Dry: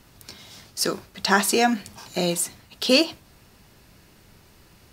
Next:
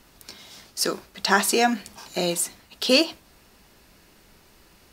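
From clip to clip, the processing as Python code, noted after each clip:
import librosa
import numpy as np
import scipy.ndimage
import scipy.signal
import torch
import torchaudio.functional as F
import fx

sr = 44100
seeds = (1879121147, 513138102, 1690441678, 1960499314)

y = fx.peak_eq(x, sr, hz=110.0, db=-10.0, octaves=1.1)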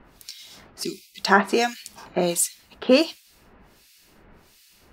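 y = fx.spec_box(x, sr, start_s=0.83, length_s=0.36, low_hz=410.0, high_hz=2000.0, gain_db=-27)
y = fx.harmonic_tremolo(y, sr, hz=1.4, depth_pct=100, crossover_hz=2200.0)
y = y * librosa.db_to_amplitude(5.0)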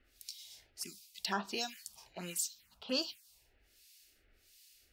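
y = fx.tone_stack(x, sr, knobs='5-5-5')
y = fx.env_phaser(y, sr, low_hz=160.0, high_hz=2100.0, full_db=-30.5)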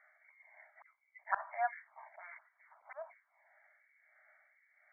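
y = fx.brickwall_bandpass(x, sr, low_hz=580.0, high_hz=2300.0)
y = fx.auto_swell(y, sr, attack_ms=204.0)
y = y * librosa.db_to_amplitude(11.5)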